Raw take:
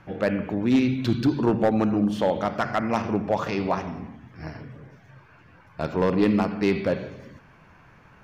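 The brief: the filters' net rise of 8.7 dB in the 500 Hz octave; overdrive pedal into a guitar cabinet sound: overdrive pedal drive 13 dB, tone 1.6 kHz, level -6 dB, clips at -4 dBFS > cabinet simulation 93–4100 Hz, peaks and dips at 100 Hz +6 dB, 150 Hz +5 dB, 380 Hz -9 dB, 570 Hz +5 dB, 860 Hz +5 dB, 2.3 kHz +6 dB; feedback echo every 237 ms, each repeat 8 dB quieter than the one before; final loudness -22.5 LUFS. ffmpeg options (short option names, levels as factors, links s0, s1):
-filter_complex "[0:a]equalizer=f=500:t=o:g=8.5,aecho=1:1:237|474|711|948|1185:0.398|0.159|0.0637|0.0255|0.0102,asplit=2[s0][s1];[s1]highpass=f=720:p=1,volume=4.47,asoftclip=type=tanh:threshold=0.631[s2];[s0][s2]amix=inputs=2:normalize=0,lowpass=f=1600:p=1,volume=0.501,highpass=93,equalizer=f=100:t=q:w=4:g=6,equalizer=f=150:t=q:w=4:g=5,equalizer=f=380:t=q:w=4:g=-9,equalizer=f=570:t=q:w=4:g=5,equalizer=f=860:t=q:w=4:g=5,equalizer=f=2300:t=q:w=4:g=6,lowpass=f=4100:w=0.5412,lowpass=f=4100:w=1.3066,volume=0.531"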